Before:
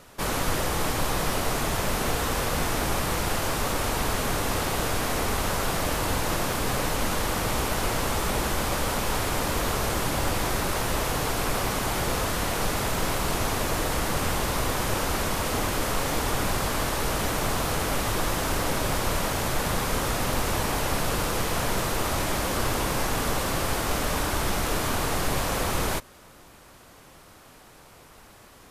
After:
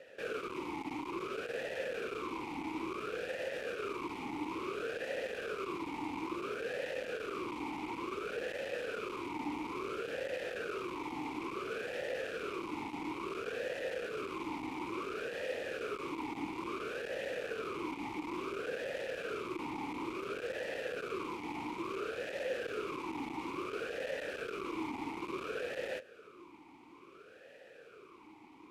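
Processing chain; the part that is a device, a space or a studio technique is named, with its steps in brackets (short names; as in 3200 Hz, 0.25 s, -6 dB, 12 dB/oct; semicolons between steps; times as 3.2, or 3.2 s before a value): talk box (tube stage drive 35 dB, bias 0.65; vowel sweep e-u 0.58 Hz); gain +11 dB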